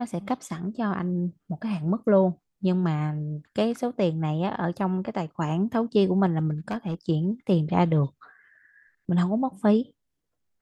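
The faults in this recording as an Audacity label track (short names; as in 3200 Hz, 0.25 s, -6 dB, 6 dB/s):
6.680000	6.940000	clipped -24 dBFS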